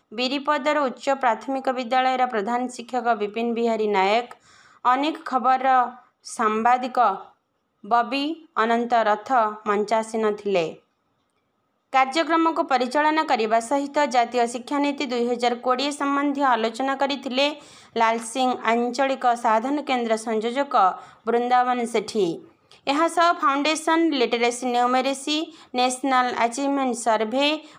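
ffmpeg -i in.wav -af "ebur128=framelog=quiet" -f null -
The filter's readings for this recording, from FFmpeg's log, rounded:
Integrated loudness:
  I:         -22.3 LUFS
  Threshold: -32.6 LUFS
Loudness range:
  LRA:         1.9 LU
  Threshold: -42.6 LUFS
  LRA low:   -23.5 LUFS
  LRA high:  -21.6 LUFS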